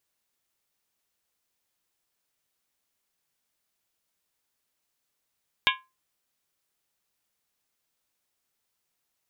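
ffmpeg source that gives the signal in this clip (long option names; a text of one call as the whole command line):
ffmpeg -f lavfi -i "aevalsrc='0.0794*pow(10,-3*t/0.26)*sin(2*PI*1040*t)+0.0794*pow(10,-3*t/0.206)*sin(2*PI*1657.8*t)+0.0794*pow(10,-3*t/0.178)*sin(2*PI*2221.4*t)+0.0794*pow(10,-3*t/0.172)*sin(2*PI*2387.8*t)+0.0794*pow(10,-3*t/0.16)*sin(2*PI*2759.1*t)+0.0794*pow(10,-3*t/0.152)*sin(2*PI*3034.7*t)+0.0794*pow(10,-3*t/0.146)*sin(2*PI*3282.2*t)+0.0794*pow(10,-3*t/0.139)*sin(2*PI*3641*t)':duration=0.63:sample_rate=44100" out.wav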